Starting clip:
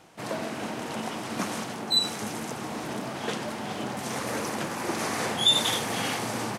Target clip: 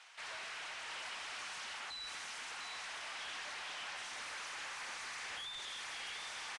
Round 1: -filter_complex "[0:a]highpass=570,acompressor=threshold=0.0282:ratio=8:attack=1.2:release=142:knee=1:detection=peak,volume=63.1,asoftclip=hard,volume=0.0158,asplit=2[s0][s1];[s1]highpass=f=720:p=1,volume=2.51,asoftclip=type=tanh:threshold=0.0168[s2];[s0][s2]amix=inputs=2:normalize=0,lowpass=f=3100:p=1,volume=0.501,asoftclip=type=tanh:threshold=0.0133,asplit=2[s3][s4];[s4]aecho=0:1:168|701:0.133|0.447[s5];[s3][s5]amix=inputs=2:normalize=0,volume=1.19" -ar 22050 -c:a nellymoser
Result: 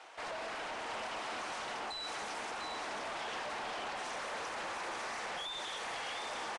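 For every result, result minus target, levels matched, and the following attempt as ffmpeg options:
500 Hz band +11.0 dB; overload inside the chain: distortion -6 dB
-filter_complex "[0:a]highpass=1800,acompressor=threshold=0.0282:ratio=8:attack=1.2:release=142:knee=1:detection=peak,volume=63.1,asoftclip=hard,volume=0.0158,asplit=2[s0][s1];[s1]highpass=f=720:p=1,volume=2.51,asoftclip=type=tanh:threshold=0.0168[s2];[s0][s2]amix=inputs=2:normalize=0,lowpass=f=3100:p=1,volume=0.501,asoftclip=type=tanh:threshold=0.0133,asplit=2[s3][s4];[s4]aecho=0:1:168|701:0.133|0.447[s5];[s3][s5]amix=inputs=2:normalize=0,volume=1.19" -ar 22050 -c:a nellymoser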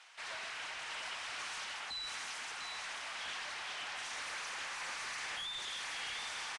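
overload inside the chain: distortion -7 dB
-filter_complex "[0:a]highpass=1800,acompressor=threshold=0.0282:ratio=8:attack=1.2:release=142:knee=1:detection=peak,volume=178,asoftclip=hard,volume=0.00562,asplit=2[s0][s1];[s1]highpass=f=720:p=1,volume=2.51,asoftclip=type=tanh:threshold=0.0168[s2];[s0][s2]amix=inputs=2:normalize=0,lowpass=f=3100:p=1,volume=0.501,asoftclip=type=tanh:threshold=0.0133,asplit=2[s3][s4];[s4]aecho=0:1:168|701:0.133|0.447[s5];[s3][s5]amix=inputs=2:normalize=0,volume=1.19" -ar 22050 -c:a nellymoser

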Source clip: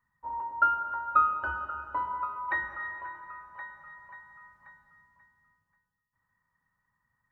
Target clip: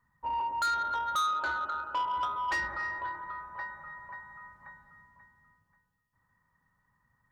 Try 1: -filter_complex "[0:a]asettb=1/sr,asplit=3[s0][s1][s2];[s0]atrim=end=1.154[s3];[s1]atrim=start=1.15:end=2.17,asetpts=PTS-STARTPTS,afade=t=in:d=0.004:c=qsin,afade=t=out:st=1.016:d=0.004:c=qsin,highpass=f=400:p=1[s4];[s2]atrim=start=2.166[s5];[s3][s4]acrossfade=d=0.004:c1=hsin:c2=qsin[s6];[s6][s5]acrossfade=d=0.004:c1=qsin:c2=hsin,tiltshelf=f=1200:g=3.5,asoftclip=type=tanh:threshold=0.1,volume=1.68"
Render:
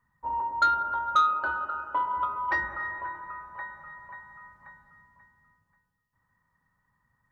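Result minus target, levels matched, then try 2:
saturation: distortion -9 dB
-filter_complex "[0:a]asettb=1/sr,asplit=3[s0][s1][s2];[s0]atrim=end=1.154[s3];[s1]atrim=start=1.15:end=2.17,asetpts=PTS-STARTPTS,afade=t=in:d=0.004:c=qsin,afade=t=out:st=1.016:d=0.004:c=qsin,highpass=f=400:p=1[s4];[s2]atrim=start=2.166[s5];[s3][s4]acrossfade=d=0.004:c1=hsin:c2=qsin[s6];[s6][s5]acrossfade=d=0.004:c1=qsin:c2=hsin,tiltshelf=f=1200:g=3.5,asoftclip=type=tanh:threshold=0.0282,volume=1.68"

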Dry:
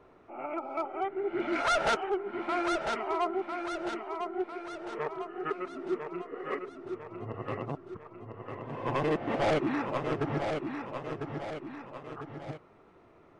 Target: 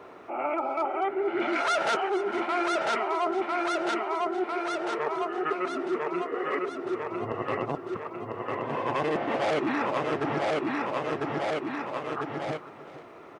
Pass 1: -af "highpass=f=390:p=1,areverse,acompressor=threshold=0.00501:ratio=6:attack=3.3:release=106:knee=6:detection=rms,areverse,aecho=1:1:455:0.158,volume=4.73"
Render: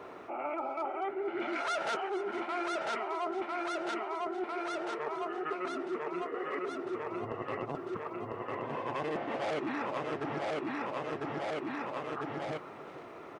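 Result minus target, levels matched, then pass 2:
compression: peak gain reduction +7.5 dB
-af "highpass=f=390:p=1,areverse,acompressor=threshold=0.0141:ratio=6:attack=3.3:release=106:knee=6:detection=rms,areverse,aecho=1:1:455:0.158,volume=4.73"

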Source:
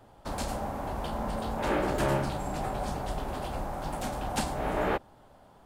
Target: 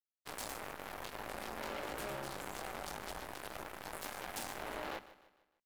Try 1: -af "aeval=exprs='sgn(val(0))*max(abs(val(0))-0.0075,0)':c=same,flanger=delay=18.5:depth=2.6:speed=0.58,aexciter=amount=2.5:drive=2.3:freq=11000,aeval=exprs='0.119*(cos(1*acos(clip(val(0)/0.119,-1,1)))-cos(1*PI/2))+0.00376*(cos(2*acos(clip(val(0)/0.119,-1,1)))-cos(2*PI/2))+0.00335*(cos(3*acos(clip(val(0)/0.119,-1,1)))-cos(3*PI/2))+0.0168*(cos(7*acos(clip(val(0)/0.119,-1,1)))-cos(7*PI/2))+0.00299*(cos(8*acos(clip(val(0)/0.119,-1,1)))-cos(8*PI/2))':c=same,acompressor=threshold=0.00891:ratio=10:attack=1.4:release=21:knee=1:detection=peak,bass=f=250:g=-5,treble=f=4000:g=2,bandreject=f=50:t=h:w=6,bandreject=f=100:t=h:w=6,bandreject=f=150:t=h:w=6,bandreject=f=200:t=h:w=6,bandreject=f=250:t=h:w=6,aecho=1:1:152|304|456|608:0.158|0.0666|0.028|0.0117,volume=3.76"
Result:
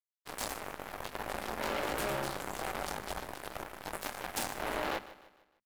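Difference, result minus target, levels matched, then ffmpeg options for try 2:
compression: peak gain reduction -7.5 dB
-af "aeval=exprs='sgn(val(0))*max(abs(val(0))-0.0075,0)':c=same,flanger=delay=18.5:depth=2.6:speed=0.58,aexciter=amount=2.5:drive=2.3:freq=11000,aeval=exprs='0.119*(cos(1*acos(clip(val(0)/0.119,-1,1)))-cos(1*PI/2))+0.00376*(cos(2*acos(clip(val(0)/0.119,-1,1)))-cos(2*PI/2))+0.00335*(cos(3*acos(clip(val(0)/0.119,-1,1)))-cos(3*PI/2))+0.0168*(cos(7*acos(clip(val(0)/0.119,-1,1)))-cos(7*PI/2))+0.00299*(cos(8*acos(clip(val(0)/0.119,-1,1)))-cos(8*PI/2))':c=same,acompressor=threshold=0.00335:ratio=10:attack=1.4:release=21:knee=1:detection=peak,bass=f=250:g=-5,treble=f=4000:g=2,bandreject=f=50:t=h:w=6,bandreject=f=100:t=h:w=6,bandreject=f=150:t=h:w=6,bandreject=f=200:t=h:w=6,bandreject=f=250:t=h:w=6,aecho=1:1:152|304|456|608:0.158|0.0666|0.028|0.0117,volume=3.76"

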